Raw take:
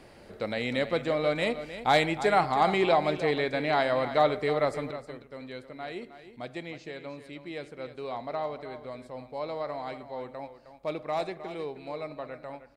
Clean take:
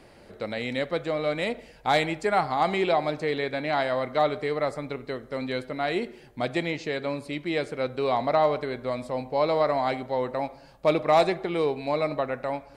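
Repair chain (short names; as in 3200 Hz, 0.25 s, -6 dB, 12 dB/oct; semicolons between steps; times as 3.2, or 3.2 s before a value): inverse comb 0.312 s -12 dB; gain correction +11 dB, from 4.91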